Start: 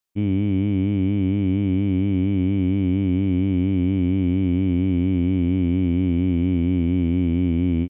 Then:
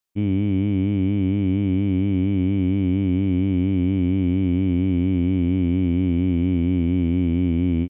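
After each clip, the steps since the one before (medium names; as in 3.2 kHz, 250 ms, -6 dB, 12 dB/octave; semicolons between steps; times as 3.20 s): no audible change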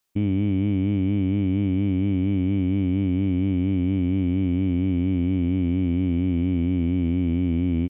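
peak limiter -21.5 dBFS, peak gain reduction 10 dB; trim +7 dB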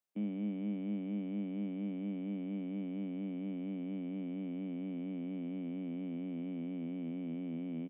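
rippled Chebyshev high-pass 150 Hz, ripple 9 dB; trim -8 dB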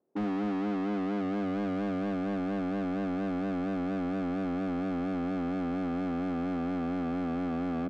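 low-pass sweep 360 Hz -> 730 Hz, 0.56–2.27 s; overdrive pedal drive 37 dB, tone 1.6 kHz, clips at -25.5 dBFS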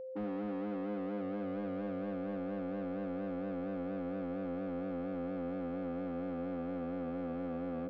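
distance through air 210 m; whistle 520 Hz -34 dBFS; trim -7.5 dB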